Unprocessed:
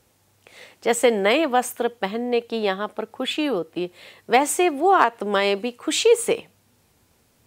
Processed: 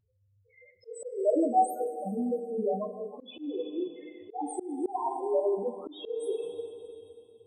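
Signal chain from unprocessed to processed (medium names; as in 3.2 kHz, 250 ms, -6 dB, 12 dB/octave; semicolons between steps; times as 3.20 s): loudest bins only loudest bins 1; two-slope reverb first 0.22 s, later 2.9 s, from -18 dB, DRR 1 dB; slow attack 317 ms; trim +1 dB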